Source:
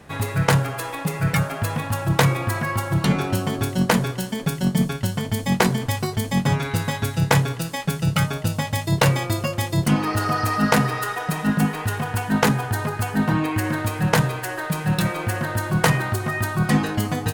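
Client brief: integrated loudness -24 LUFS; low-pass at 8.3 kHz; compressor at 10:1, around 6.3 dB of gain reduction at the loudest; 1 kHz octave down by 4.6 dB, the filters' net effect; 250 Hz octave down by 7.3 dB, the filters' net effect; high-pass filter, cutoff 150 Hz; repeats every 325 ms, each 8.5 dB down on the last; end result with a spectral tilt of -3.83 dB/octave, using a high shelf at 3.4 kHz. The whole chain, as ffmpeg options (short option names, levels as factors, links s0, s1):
-af "highpass=150,lowpass=8300,equalizer=f=250:t=o:g=-9,equalizer=f=1000:t=o:g=-6,highshelf=f=3400:g=5,acompressor=threshold=0.0562:ratio=10,aecho=1:1:325|650|975|1300:0.376|0.143|0.0543|0.0206,volume=1.88"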